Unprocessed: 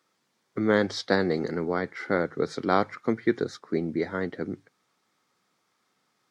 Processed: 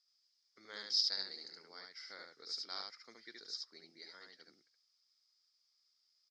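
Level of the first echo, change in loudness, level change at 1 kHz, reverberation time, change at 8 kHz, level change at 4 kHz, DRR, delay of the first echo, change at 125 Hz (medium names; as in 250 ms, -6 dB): -3.0 dB, -12.0 dB, -25.5 dB, no reverb, no reading, +2.0 dB, no reverb, 72 ms, under -40 dB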